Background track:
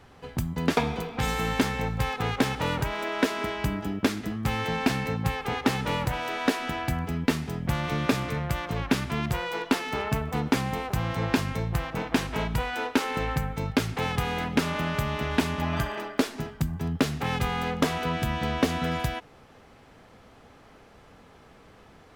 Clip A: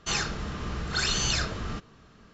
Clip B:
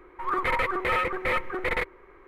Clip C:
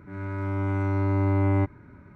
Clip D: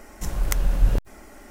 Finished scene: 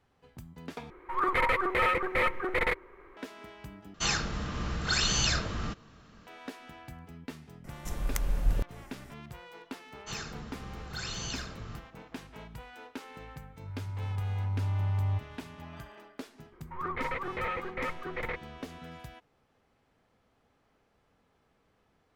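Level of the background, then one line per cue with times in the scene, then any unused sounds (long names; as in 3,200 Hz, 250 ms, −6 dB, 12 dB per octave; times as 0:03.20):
background track −18 dB
0:00.90: overwrite with B −1 dB
0:03.94: overwrite with A −0.5 dB + notch filter 400 Hz, Q 8.8
0:07.64: mix in D −8 dB
0:10.00: mix in A −11.5 dB, fades 0.10 s + single-tap delay 89 ms −11 dB
0:13.53: mix in C −5 dB + drawn EQ curve 130 Hz 0 dB, 250 Hz −27 dB, 560 Hz −18 dB, 810 Hz −3 dB, 1,400 Hz −18 dB, 3,500 Hz −4 dB
0:16.52: mix in B −7.5 dB + high-frequency loss of the air 190 metres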